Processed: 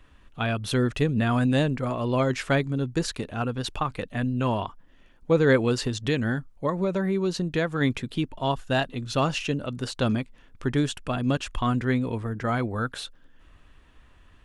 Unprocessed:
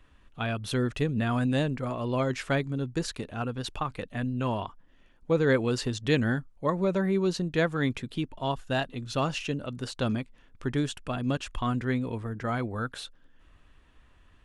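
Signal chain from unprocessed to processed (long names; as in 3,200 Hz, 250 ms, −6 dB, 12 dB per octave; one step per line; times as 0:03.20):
0:05.72–0:07.81: downward compressor 2.5 to 1, threshold −27 dBFS, peak gain reduction 6 dB
level +4 dB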